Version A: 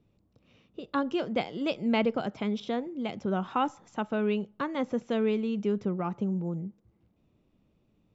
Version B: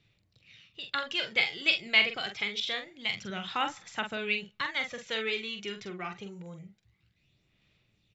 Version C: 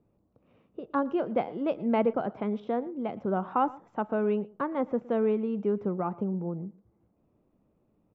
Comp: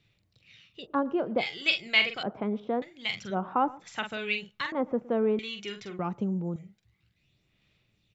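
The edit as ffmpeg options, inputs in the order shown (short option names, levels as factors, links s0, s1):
-filter_complex "[2:a]asplit=4[s0][s1][s2][s3];[1:a]asplit=6[s4][s5][s6][s7][s8][s9];[s4]atrim=end=0.87[s10];[s0]atrim=start=0.77:end=1.47[s11];[s5]atrim=start=1.37:end=2.232[s12];[s1]atrim=start=2.228:end=2.822[s13];[s6]atrim=start=2.818:end=3.36[s14];[s2]atrim=start=3.3:end=3.85[s15];[s7]atrim=start=3.79:end=4.722[s16];[s3]atrim=start=4.718:end=5.392[s17];[s8]atrim=start=5.388:end=5.992[s18];[0:a]atrim=start=5.988:end=6.562[s19];[s9]atrim=start=6.558[s20];[s10][s11]acrossfade=d=0.1:c1=tri:c2=tri[s21];[s21][s12]acrossfade=d=0.1:c1=tri:c2=tri[s22];[s22][s13]acrossfade=d=0.004:c1=hsin:c2=hsin[s23];[s23][s14]acrossfade=d=0.004:c1=hsin:c2=hsin[s24];[s24][s15]acrossfade=d=0.06:c1=tri:c2=tri[s25];[s25][s16]acrossfade=d=0.06:c1=tri:c2=tri[s26];[s26][s17]acrossfade=d=0.004:c1=hsin:c2=hsin[s27];[s27][s18]acrossfade=d=0.004:c1=hsin:c2=hsin[s28];[s28][s19]acrossfade=d=0.004:c1=hsin:c2=hsin[s29];[s29][s20]acrossfade=d=0.004:c1=hsin:c2=hsin"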